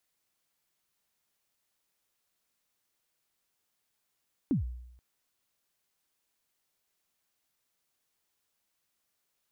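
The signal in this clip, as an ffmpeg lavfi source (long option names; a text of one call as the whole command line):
ffmpeg -f lavfi -i "aevalsrc='0.0794*pow(10,-3*t/0.84)*sin(2*PI*(320*0.126/log(61/320)*(exp(log(61/320)*min(t,0.126)/0.126)-1)+61*max(t-0.126,0)))':duration=0.48:sample_rate=44100" out.wav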